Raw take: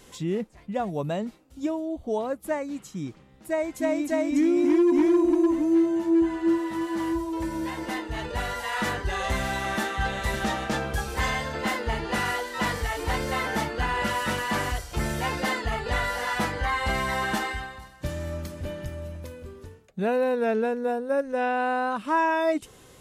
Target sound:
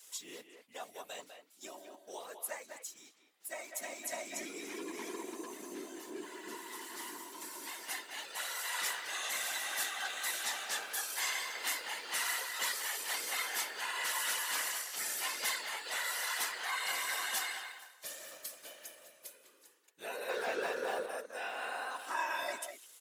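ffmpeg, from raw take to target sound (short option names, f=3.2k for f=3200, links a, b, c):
-filter_complex "[0:a]asettb=1/sr,asplit=3[a][b][c];[a]atrim=end=2.574[d];[b]atrim=start=2.57:end=4.05,asetpts=PTS-STARTPTS,afade=t=in:d=0.004:c=qsin,afade=t=out:st=1.476:d=0.004:c=qsin,aeval=exprs='if(lt(val(0),0),0.708*val(0),val(0))':c=same[e];[c]atrim=start=4.046[f];[d][e]acrossfade=d=0.004:c1=hsin:c2=qsin[g];[g][f]acrossfade=d=0.004:c1=qsin:c2=hsin,aderivative,asettb=1/sr,asplit=3[h][i][j];[h]atrim=end=20.294[k];[i]atrim=start=20.29:end=21.06,asetpts=PTS-STARTPTS,afade=t=in:d=0.004:c=qsin,afade=t=out:st=0.766:d=0.004:c=qsin,asplit=2[l][m];[m]highpass=f=720:p=1,volume=30dB,asoftclip=type=tanh:threshold=-31.5dB[n];[l][n]amix=inputs=2:normalize=0,lowpass=f=2k:p=1,volume=-6dB[o];[j]atrim=start=21.056[p];[k][o]acrossfade=d=0.004:c1=hsin:c2=qsin[q];[q][p]acrossfade=d=0.004:c1=qsin:c2=hsin,asplit=2[r][s];[s]aeval=exprs='val(0)*gte(abs(val(0)),0.00251)':c=same,volume=-5.5dB[t];[r][t]amix=inputs=2:normalize=0,afftfilt=real='hypot(re,im)*cos(2*PI*random(0))':imag='hypot(re,im)*sin(2*PI*random(1))':win_size=512:overlap=0.75,highpass=290,asplit=2[u][v];[v]adelay=200,highpass=300,lowpass=3.4k,asoftclip=type=hard:threshold=-35.5dB,volume=-7dB[w];[u][w]amix=inputs=2:normalize=0,volume=5.5dB"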